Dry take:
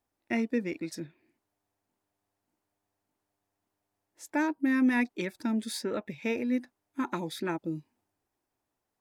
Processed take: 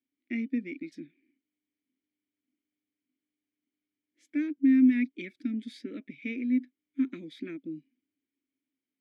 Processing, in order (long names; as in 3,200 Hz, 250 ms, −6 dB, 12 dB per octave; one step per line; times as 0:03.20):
formant filter i
level +6.5 dB